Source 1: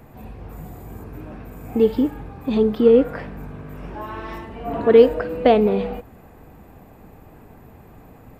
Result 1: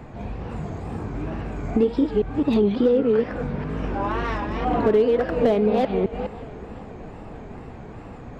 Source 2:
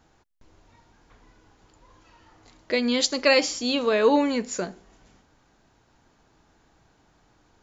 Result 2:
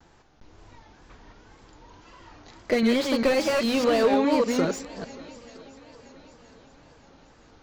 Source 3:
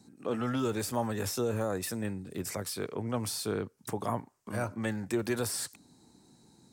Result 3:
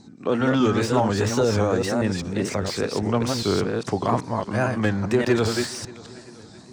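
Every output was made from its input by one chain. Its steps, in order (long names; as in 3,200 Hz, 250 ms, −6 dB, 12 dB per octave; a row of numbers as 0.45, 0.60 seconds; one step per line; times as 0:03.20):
delay that plays each chunk backwards 202 ms, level −4 dB
low-pass filter 6,700 Hz 24 dB per octave
downward compressor 4 to 1, threshold −23 dBFS
tape wow and flutter 120 cents
feedback echo with a long and a short gap by turns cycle 968 ms, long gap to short 1.5 to 1, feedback 39%, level −22 dB
slew-rate limiting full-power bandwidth 60 Hz
loudness normalisation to −23 LKFS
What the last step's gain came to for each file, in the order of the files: +5.5, +5.0, +10.5 decibels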